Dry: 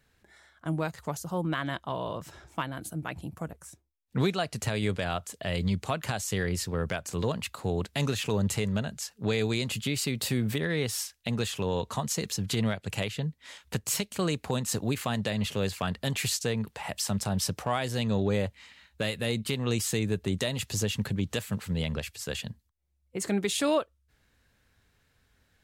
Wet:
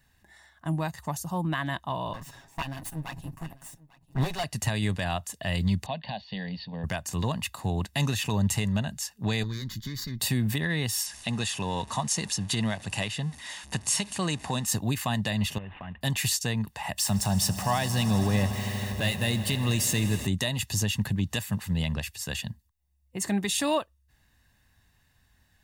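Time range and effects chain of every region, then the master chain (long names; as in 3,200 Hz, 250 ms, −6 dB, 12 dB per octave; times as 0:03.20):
0:02.13–0:04.44: lower of the sound and its delayed copy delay 7.3 ms + single-tap delay 845 ms −21.5 dB
0:05.86–0:06.84: Chebyshev low-pass with heavy ripple 4,600 Hz, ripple 3 dB + phaser with its sweep stopped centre 350 Hz, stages 6
0:09.43–0:10.20: tube saturation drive 27 dB, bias 0.75 + phaser with its sweep stopped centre 2,700 Hz, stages 6
0:11.06–0:14.66: converter with a step at zero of −41.5 dBFS + low-shelf EQ 94 Hz −11.5 dB + bad sample-rate conversion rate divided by 2×, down none, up filtered
0:15.58–0:16.01: variable-slope delta modulation 16 kbit/s + downward compressor, threshold −37 dBFS
0:16.98–0:20.27: converter with a step at zero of −38.5 dBFS + echo that builds up and dies away 80 ms, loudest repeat 5, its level −18 dB
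whole clip: high-shelf EQ 9,900 Hz +6 dB; comb filter 1.1 ms, depth 58%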